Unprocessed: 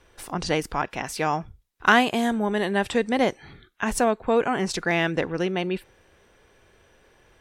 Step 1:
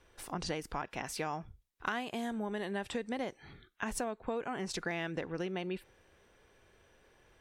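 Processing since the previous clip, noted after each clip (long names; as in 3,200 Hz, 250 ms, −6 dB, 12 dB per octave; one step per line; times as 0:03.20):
downward compressor 6 to 1, threshold −26 dBFS, peak gain reduction 13 dB
level −7 dB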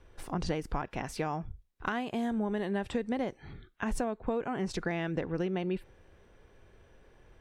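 spectral tilt −2 dB per octave
level +2 dB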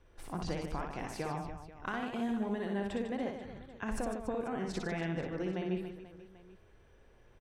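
reverse bouncing-ball delay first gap 60 ms, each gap 1.5×, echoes 5
level −5.5 dB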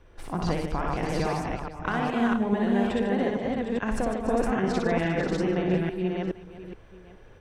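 delay that plays each chunk backwards 421 ms, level −1.5 dB
high-shelf EQ 6,900 Hz −8 dB
level +8.5 dB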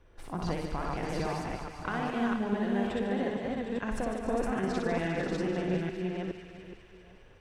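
delay with a high-pass on its return 201 ms, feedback 72%, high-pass 1,800 Hz, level −8.5 dB
on a send at −15 dB: convolution reverb RT60 2.3 s, pre-delay 49 ms
on the sum: level −5.5 dB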